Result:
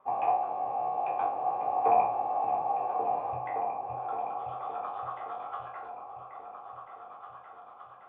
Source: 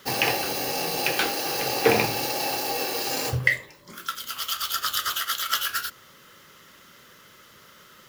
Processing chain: spectral sustain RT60 0.38 s; cascade formant filter a; delay with an opening low-pass 567 ms, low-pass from 200 Hz, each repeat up 2 oct, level -3 dB; trim +7 dB

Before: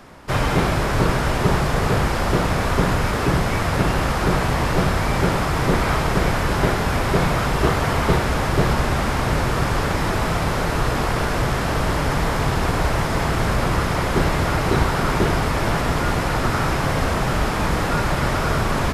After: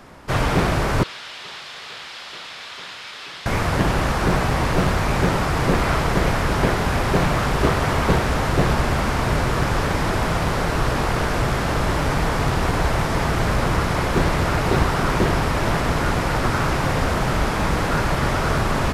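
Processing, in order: 1.03–3.46 s: band-pass filter 3.6 kHz, Q 2; loudspeaker Doppler distortion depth 0.51 ms

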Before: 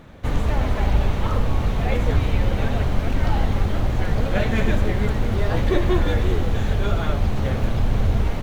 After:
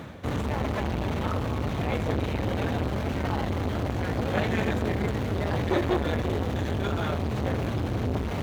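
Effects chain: high-pass 71 Hz 24 dB/octave; reverse; upward compressor, threshold -24 dBFS; reverse; transformer saturation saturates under 640 Hz

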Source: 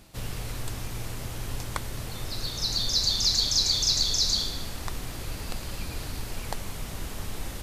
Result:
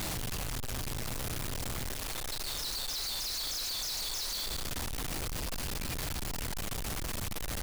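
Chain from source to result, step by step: one-bit comparator; 1.92–4.47 s: peaking EQ 130 Hz -9.5 dB 2.4 oct; trim -6 dB

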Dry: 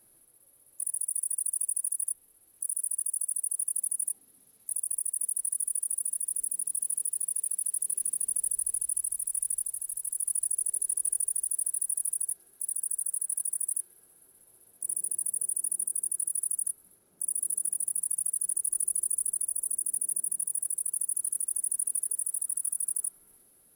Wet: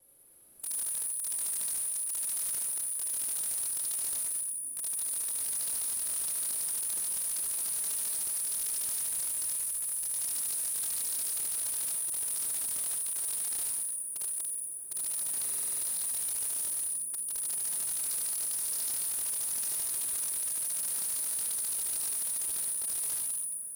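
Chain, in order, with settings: slices played last to first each 149 ms, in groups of 4; Schroeder reverb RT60 2.6 s, combs from 30 ms, DRR -3.5 dB; wavefolder -26 dBFS; buffer glitch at 15.44 s, samples 2048, times 7; trim -2 dB

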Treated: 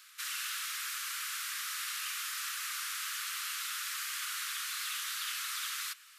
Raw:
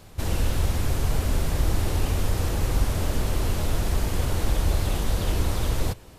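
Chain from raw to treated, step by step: steep high-pass 1.2 kHz 72 dB/octave

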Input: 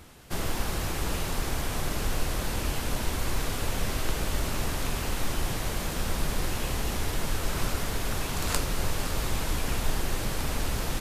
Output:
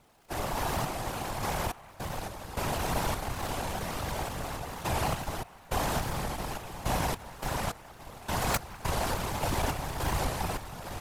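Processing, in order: peaking EQ 790 Hz +11.5 dB 0.99 oct; Chebyshev shaper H 3 -8 dB, 5 -14 dB, 7 -11 dB, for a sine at -6 dBFS; random-step tremolo, depth 95%; crackle 170 per s -51 dBFS; on a send: feedback echo behind a band-pass 201 ms, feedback 65%, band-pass 1.4 kHz, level -19 dB; on the sum: whisper effect; warped record 45 rpm, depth 100 cents

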